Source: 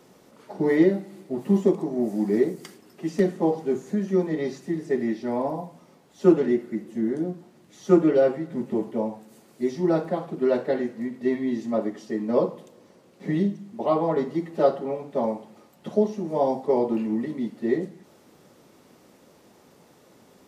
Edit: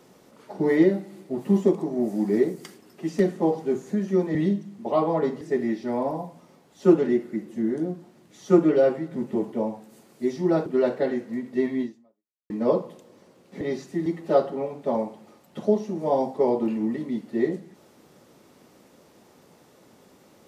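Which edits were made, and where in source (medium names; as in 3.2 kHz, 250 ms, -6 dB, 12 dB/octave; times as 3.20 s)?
4.35–4.80 s: swap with 13.29–14.35 s
10.05–10.34 s: delete
11.50–12.18 s: fade out exponential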